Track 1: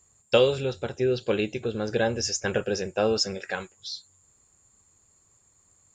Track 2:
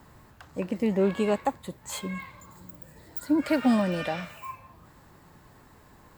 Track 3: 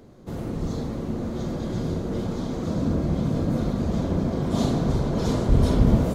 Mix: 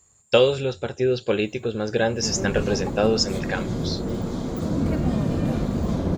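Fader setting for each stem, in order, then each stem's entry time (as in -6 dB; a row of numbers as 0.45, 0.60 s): +3.0, -9.5, +0.5 dB; 0.00, 1.40, 1.95 s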